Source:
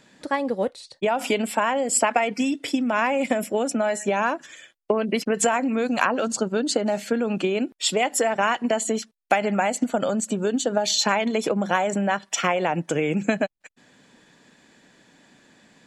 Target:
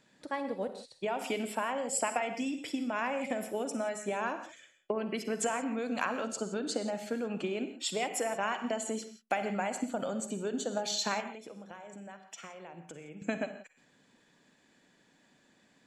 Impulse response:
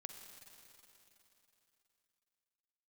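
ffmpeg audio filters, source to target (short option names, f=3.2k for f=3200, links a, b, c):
-filter_complex "[0:a]asettb=1/sr,asplit=3[a][b][c];[a]atrim=end=11.204[d];[b]atrim=start=11.2:end=13.22,asetpts=PTS-STARTPTS,afade=t=in:d=0.004:c=qsin,afade=t=out:st=2.016:d=0.004:c=qsin,acompressor=threshold=-33dB:ratio=12[e];[c]atrim=start=13.216[f];[d][e]acrossfade=d=0.004:c1=hsin:c2=qsin[g];[g][f]acrossfade=d=0.004:c1=qsin:c2=hsin[h];[1:a]atrim=start_sample=2205,afade=t=out:st=0.23:d=0.01,atrim=end_sample=10584[i];[h][i]afir=irnorm=-1:irlink=0,volume=-5.5dB"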